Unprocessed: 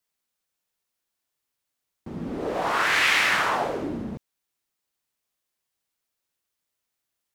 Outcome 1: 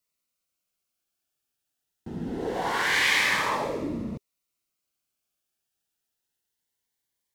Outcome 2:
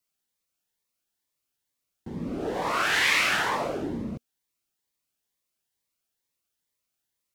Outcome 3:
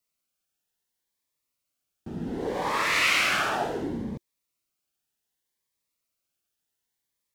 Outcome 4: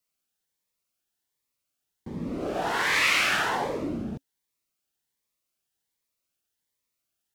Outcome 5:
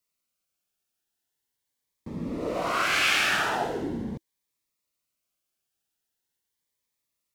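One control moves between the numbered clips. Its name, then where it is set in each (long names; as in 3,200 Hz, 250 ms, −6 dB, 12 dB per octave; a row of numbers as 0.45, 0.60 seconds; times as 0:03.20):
phaser whose notches keep moving one way, speed: 0.24, 2.2, 0.67, 1.3, 0.41 Hertz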